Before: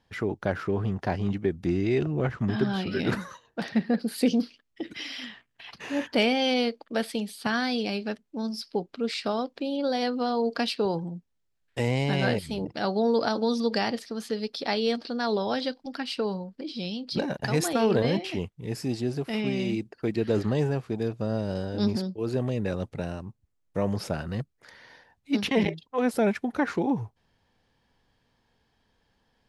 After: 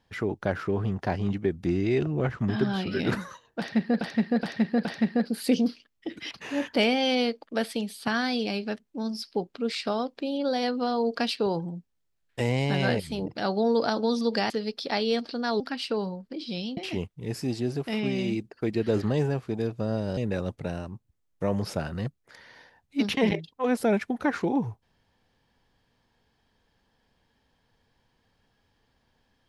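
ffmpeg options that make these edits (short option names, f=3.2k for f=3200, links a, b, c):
-filter_complex "[0:a]asplit=9[a][b][c][d][e][f][g][h][i];[a]atrim=end=4.012[j];[b]atrim=start=3.588:end=4.012[k];[c]atrim=start=3.588:end=4.012[l];[d]atrim=start=3.588:end=5.052[m];[e]atrim=start=5.698:end=13.892[n];[f]atrim=start=14.258:end=15.362[o];[g]atrim=start=15.878:end=17.052[p];[h]atrim=start=18.178:end=21.582[q];[i]atrim=start=22.508[r];[j][k]acrossfade=d=0.004:c1=hsin:c2=hsin[s];[s][l]acrossfade=d=0.004:c1=hsin:c2=hsin[t];[t][m]acrossfade=d=0.004:c1=hsin:c2=hsin[u];[u][n]acrossfade=d=0.004:c1=hsin:c2=hsin[v];[v][o]acrossfade=d=0.004:c1=hsin:c2=hsin[w];[w][p]acrossfade=d=0.004:c1=hsin:c2=hsin[x];[x][q]acrossfade=d=0.004:c1=hsin:c2=hsin[y];[y][r]acrossfade=d=0.004:c1=hsin:c2=hsin"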